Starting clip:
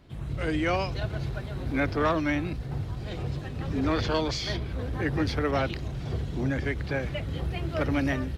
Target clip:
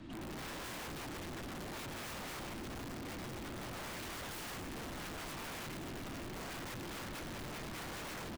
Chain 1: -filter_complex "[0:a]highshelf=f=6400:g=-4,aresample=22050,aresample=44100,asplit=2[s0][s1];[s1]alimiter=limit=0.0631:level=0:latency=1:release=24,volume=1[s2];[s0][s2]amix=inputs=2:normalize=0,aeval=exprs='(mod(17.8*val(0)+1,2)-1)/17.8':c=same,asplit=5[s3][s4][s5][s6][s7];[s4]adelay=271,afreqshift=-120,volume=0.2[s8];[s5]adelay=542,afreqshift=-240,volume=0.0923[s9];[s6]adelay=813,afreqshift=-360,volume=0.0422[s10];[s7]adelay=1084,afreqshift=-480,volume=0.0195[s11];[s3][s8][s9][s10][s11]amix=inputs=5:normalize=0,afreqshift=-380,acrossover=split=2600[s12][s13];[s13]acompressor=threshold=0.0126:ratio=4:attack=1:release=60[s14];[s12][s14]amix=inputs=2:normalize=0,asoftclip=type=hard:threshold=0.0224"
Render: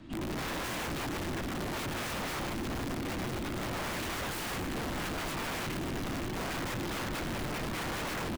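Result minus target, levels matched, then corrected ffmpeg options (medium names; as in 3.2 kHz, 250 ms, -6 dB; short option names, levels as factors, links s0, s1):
hard clipper: distortion -4 dB
-filter_complex "[0:a]highshelf=f=6400:g=-4,aresample=22050,aresample=44100,asplit=2[s0][s1];[s1]alimiter=limit=0.0631:level=0:latency=1:release=24,volume=1[s2];[s0][s2]amix=inputs=2:normalize=0,aeval=exprs='(mod(17.8*val(0)+1,2)-1)/17.8':c=same,asplit=5[s3][s4][s5][s6][s7];[s4]adelay=271,afreqshift=-120,volume=0.2[s8];[s5]adelay=542,afreqshift=-240,volume=0.0923[s9];[s6]adelay=813,afreqshift=-360,volume=0.0422[s10];[s7]adelay=1084,afreqshift=-480,volume=0.0195[s11];[s3][s8][s9][s10][s11]amix=inputs=5:normalize=0,afreqshift=-380,acrossover=split=2600[s12][s13];[s13]acompressor=threshold=0.0126:ratio=4:attack=1:release=60[s14];[s12][s14]amix=inputs=2:normalize=0,asoftclip=type=hard:threshold=0.00668"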